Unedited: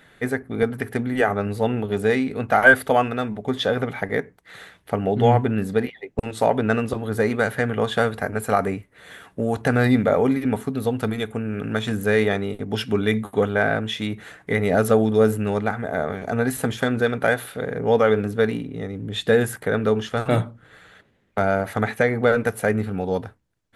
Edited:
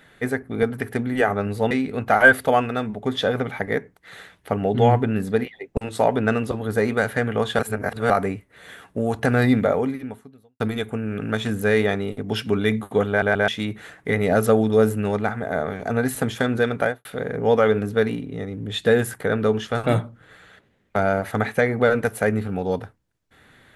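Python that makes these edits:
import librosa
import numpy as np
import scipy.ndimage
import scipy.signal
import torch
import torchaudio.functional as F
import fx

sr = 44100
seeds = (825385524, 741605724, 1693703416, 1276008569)

y = fx.studio_fade_out(x, sr, start_s=17.21, length_s=0.26)
y = fx.edit(y, sr, fx.cut(start_s=1.71, length_s=0.42),
    fx.reverse_span(start_s=8.01, length_s=0.51),
    fx.fade_out_span(start_s=10.05, length_s=0.97, curve='qua'),
    fx.stutter_over(start_s=13.51, slice_s=0.13, count=3), tone=tone)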